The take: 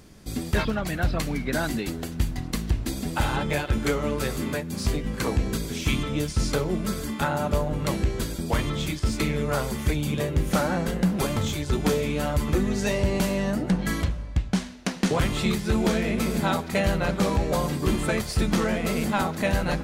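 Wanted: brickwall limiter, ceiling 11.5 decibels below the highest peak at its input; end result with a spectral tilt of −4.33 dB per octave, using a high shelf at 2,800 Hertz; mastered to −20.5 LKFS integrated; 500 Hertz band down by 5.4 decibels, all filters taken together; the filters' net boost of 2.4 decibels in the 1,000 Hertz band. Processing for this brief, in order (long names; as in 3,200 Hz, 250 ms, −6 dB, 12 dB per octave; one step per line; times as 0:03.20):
parametric band 500 Hz −8.5 dB
parametric band 1,000 Hz +5 dB
high-shelf EQ 2,800 Hz +5 dB
level +10.5 dB
brickwall limiter −11 dBFS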